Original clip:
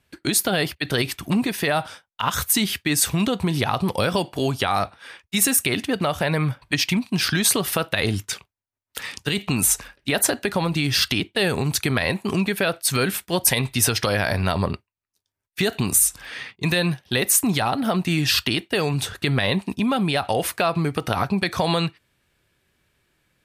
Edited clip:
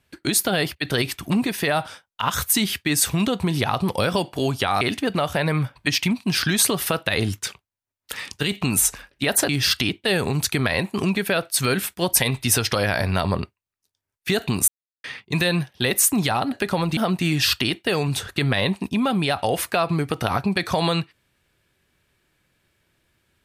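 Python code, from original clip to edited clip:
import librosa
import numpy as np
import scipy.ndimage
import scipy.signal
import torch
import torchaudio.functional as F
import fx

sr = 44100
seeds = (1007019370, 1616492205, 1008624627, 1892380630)

y = fx.edit(x, sr, fx.cut(start_s=4.81, length_s=0.86),
    fx.move(start_s=10.35, length_s=0.45, to_s=17.83),
    fx.silence(start_s=15.99, length_s=0.36), tone=tone)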